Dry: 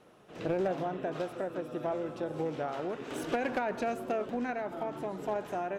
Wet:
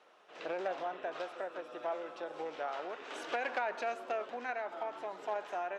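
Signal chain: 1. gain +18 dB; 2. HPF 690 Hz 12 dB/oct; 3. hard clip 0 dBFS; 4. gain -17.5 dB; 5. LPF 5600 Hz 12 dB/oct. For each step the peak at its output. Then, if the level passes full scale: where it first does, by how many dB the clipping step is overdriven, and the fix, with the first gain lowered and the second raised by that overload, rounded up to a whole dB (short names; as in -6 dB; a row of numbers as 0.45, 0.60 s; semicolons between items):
-6.0, -4.5, -4.5, -22.0, -22.5 dBFS; no overload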